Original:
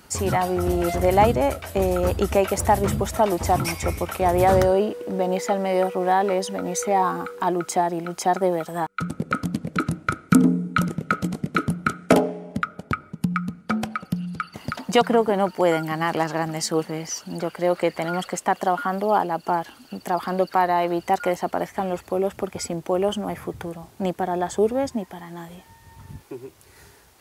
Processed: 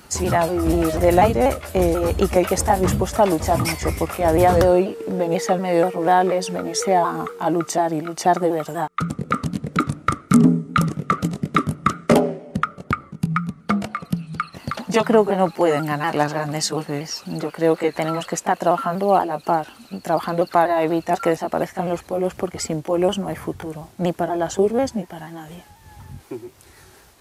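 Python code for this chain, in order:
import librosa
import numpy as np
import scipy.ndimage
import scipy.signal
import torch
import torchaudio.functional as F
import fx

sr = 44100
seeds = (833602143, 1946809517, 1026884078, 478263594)

y = fx.pitch_ramps(x, sr, semitones=-2.0, every_ms=243)
y = y * 10.0 ** (4.0 / 20.0)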